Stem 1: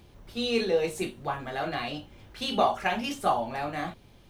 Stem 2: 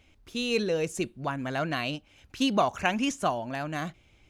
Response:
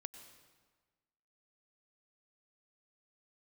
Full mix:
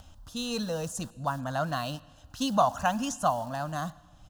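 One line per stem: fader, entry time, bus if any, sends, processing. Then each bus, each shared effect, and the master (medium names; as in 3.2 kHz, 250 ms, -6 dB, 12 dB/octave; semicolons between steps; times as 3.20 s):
-9.0 dB, 0.00 s, no send, harmonic tremolo 1.9 Hz, depth 100%, crossover 520 Hz; integer overflow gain 38.5 dB
+1.0 dB, 0.6 ms, send -6.5 dB, upward compressor, threshold -43 dBFS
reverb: on, RT60 1.4 s, pre-delay 89 ms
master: static phaser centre 930 Hz, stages 4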